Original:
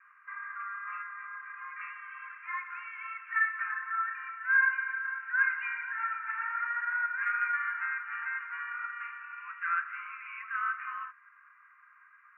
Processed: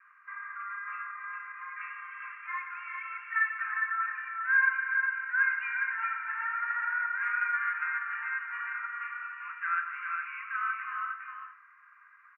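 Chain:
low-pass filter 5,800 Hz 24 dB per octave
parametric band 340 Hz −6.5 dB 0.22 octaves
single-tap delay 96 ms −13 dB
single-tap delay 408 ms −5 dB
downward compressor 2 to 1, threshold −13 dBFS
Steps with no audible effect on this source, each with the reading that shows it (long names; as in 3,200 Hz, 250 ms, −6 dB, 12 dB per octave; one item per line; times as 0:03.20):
low-pass filter 5,800 Hz: nothing at its input above 2,600 Hz
parametric band 340 Hz: nothing at its input below 850 Hz
downward compressor, threshold −13 dBFS: peak of its input −15.5 dBFS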